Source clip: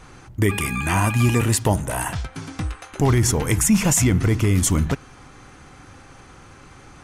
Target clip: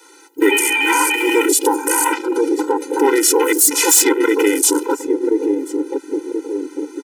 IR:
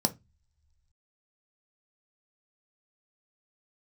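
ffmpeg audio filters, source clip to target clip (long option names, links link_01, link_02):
-filter_complex "[0:a]highpass=frequency=85:poles=1,aemphasis=mode=production:type=50fm,asplit=2[link_01][link_02];[link_02]adelay=1032,lowpass=frequency=900:poles=1,volume=-5dB,asplit=2[link_03][link_04];[link_04]adelay=1032,lowpass=frequency=900:poles=1,volume=0.41,asplit=2[link_05][link_06];[link_06]adelay=1032,lowpass=frequency=900:poles=1,volume=0.41,asplit=2[link_07][link_08];[link_08]adelay=1032,lowpass=frequency=900:poles=1,volume=0.41,asplit=2[link_09][link_10];[link_10]adelay=1032,lowpass=frequency=900:poles=1,volume=0.41[link_11];[link_03][link_05][link_07][link_09][link_11]amix=inputs=5:normalize=0[link_12];[link_01][link_12]amix=inputs=2:normalize=0,adynamicequalizer=threshold=0.02:dfrequency=160:dqfactor=3.6:tfrequency=160:tqfactor=3.6:attack=5:release=100:ratio=0.375:range=2:mode=cutabove:tftype=bell,acrossover=split=6300[link_13][link_14];[link_14]volume=3.5dB,asoftclip=hard,volume=-3.5dB[link_15];[link_13][link_15]amix=inputs=2:normalize=0,asplit=3[link_16][link_17][link_18];[link_17]asetrate=33038,aresample=44100,atempo=1.33484,volume=-11dB[link_19];[link_18]asetrate=58866,aresample=44100,atempo=0.749154,volume=-14dB[link_20];[link_16][link_19][link_20]amix=inputs=3:normalize=0,asoftclip=type=tanh:threshold=-16dB,afwtdn=0.0282,alimiter=level_in=21dB:limit=-1dB:release=50:level=0:latency=1,afftfilt=real='re*eq(mod(floor(b*sr/1024/260),2),1)':imag='im*eq(mod(floor(b*sr/1024/260),2),1)':win_size=1024:overlap=0.75,volume=-2dB"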